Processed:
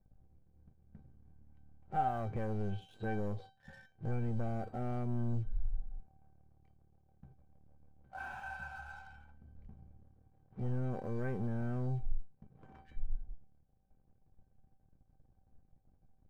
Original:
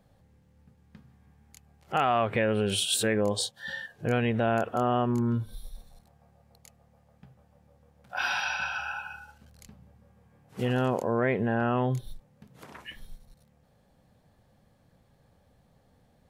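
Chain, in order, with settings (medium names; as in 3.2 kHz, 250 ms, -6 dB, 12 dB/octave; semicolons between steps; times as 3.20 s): low-pass 1.9 kHz 12 dB/octave; tilt EQ -4.5 dB/octave; waveshaping leveller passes 2; feedback comb 770 Hz, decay 0.29 s, mix 90%; trim -5 dB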